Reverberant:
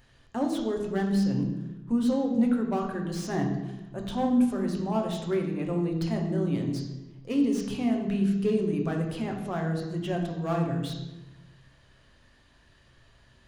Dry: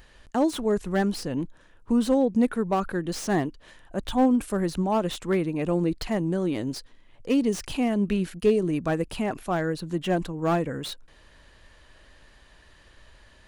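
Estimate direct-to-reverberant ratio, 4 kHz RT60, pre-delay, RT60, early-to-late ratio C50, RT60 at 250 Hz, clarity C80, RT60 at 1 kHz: 1.5 dB, 0.80 s, 3 ms, 1.1 s, 5.5 dB, 1.4 s, 7.5 dB, 0.95 s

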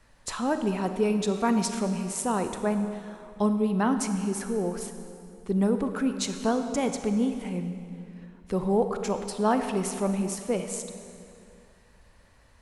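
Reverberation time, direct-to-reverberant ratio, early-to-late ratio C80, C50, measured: 2.5 s, 7.0 dB, 8.5 dB, 8.0 dB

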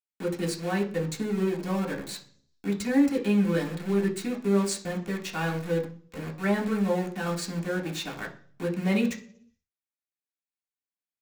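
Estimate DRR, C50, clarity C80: -2.5 dB, 12.0 dB, 16.5 dB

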